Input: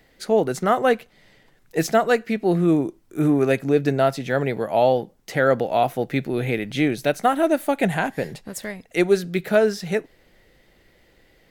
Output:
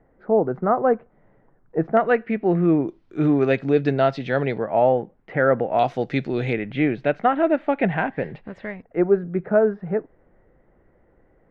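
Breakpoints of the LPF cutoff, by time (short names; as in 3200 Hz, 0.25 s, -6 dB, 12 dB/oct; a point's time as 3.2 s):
LPF 24 dB/oct
1300 Hz
from 1.97 s 2400 Hz
from 2.88 s 4200 Hz
from 4.58 s 2100 Hz
from 5.79 s 5500 Hz
from 6.53 s 2600 Hz
from 8.82 s 1400 Hz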